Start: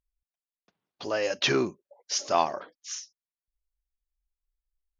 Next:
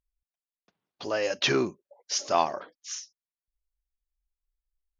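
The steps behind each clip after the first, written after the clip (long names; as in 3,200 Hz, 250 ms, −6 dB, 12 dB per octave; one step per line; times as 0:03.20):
no processing that can be heard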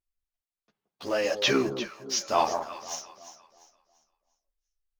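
in parallel at −6 dB: centre clipping without the shift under −33 dBFS
on the sum: delay that swaps between a low-pass and a high-pass 173 ms, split 1,000 Hz, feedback 57%, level −7.5 dB
string-ensemble chorus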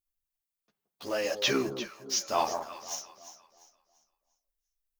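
high-shelf EQ 8,800 Hz +12 dB
level −4 dB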